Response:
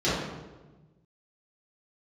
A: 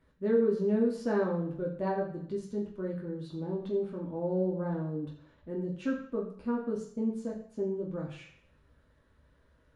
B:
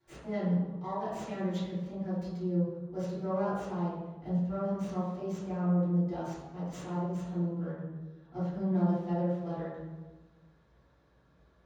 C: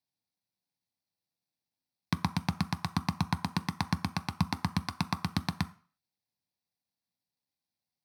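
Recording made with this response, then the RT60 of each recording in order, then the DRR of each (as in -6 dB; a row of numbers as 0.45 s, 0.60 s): B; 0.60 s, 1.2 s, 0.40 s; -3.5 dB, -12.0 dB, 9.0 dB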